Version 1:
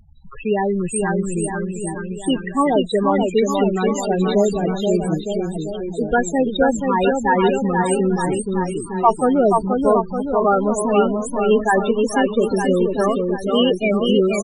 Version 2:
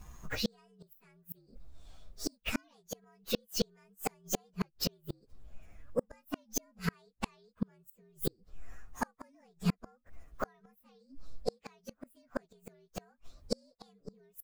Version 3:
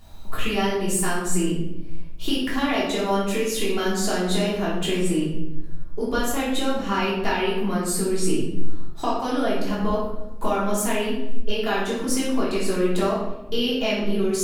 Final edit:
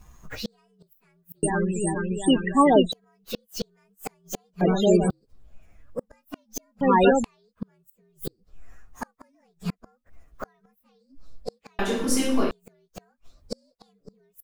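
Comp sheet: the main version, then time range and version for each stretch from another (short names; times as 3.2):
2
1.43–2.92 from 1
4.61–5.1 from 1
6.81–7.24 from 1
11.79–12.51 from 3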